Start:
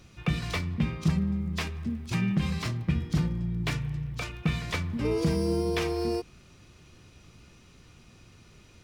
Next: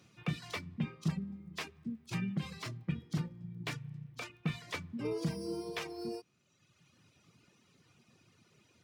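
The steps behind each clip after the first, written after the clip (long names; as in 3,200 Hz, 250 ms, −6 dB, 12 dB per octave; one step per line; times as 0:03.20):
reverb reduction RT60 1.4 s
high-pass filter 110 Hz 24 dB per octave
level −7 dB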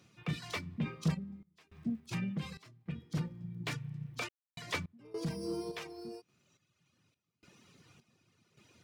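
soft clipping −28.5 dBFS, distortion −15 dB
sample-and-hold tremolo, depth 100%
level +5.5 dB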